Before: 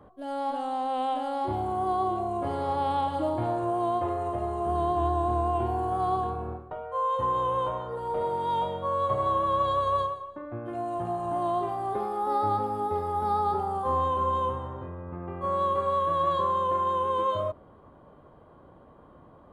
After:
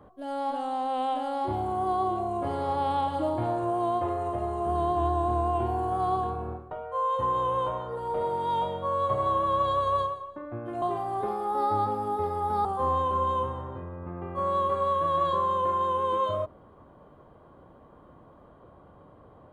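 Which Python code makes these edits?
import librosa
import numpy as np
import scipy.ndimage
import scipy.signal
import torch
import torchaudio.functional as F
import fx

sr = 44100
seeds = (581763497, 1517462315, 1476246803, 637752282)

y = fx.edit(x, sr, fx.cut(start_s=10.82, length_s=0.72),
    fx.cut(start_s=13.37, length_s=0.34), tone=tone)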